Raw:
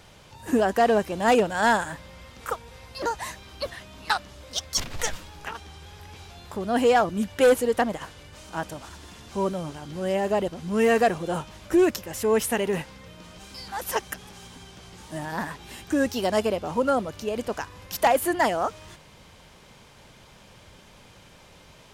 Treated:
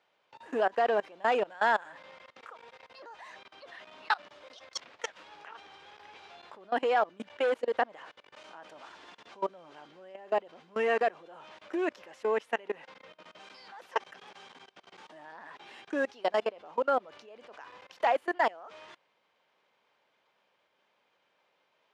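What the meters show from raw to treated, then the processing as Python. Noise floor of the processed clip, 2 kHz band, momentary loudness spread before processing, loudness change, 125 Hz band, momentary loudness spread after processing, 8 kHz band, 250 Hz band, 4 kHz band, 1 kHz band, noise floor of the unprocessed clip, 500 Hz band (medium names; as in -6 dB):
-74 dBFS, -5.5 dB, 21 LU, -6.0 dB, under -25 dB, 23 LU, under -15 dB, -15.0 dB, -10.5 dB, -5.5 dB, -52 dBFS, -7.5 dB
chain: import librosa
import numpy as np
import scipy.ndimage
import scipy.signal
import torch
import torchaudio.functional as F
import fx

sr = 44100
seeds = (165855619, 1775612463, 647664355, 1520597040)

y = fx.level_steps(x, sr, step_db=23)
y = fx.bandpass_edges(y, sr, low_hz=480.0, high_hz=3100.0)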